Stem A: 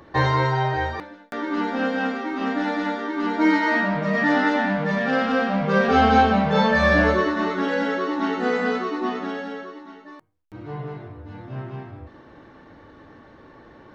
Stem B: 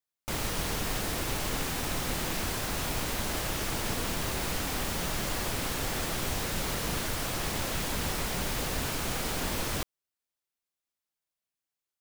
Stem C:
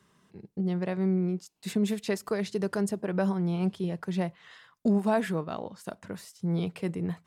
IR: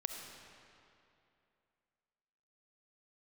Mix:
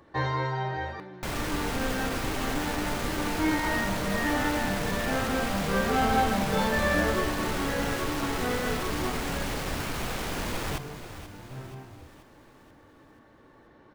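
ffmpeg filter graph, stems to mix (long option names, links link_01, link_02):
-filter_complex "[0:a]volume=-8.5dB,asplit=2[link_01][link_02];[link_02]volume=-22.5dB[link_03];[1:a]lowpass=2700,acrusher=bits=5:mix=0:aa=0.000001,adelay=950,volume=0.5dB,asplit=2[link_04][link_05];[link_05]volume=-12.5dB[link_06];[2:a]highpass=370,volume=-13dB[link_07];[link_03][link_06]amix=inputs=2:normalize=0,aecho=0:1:482|964|1446|1928|2410|2892|3374|3856:1|0.52|0.27|0.141|0.0731|0.038|0.0198|0.0103[link_08];[link_01][link_04][link_07][link_08]amix=inputs=4:normalize=0"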